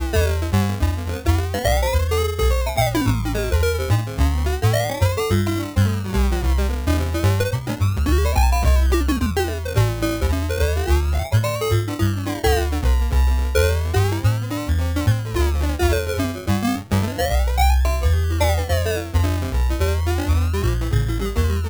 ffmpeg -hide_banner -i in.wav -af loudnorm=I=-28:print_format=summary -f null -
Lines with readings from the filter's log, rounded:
Input Integrated:    -20.6 LUFS
Input True Peak:      -5.9 dBTP
Input LRA:             1.5 LU
Input Threshold:     -30.6 LUFS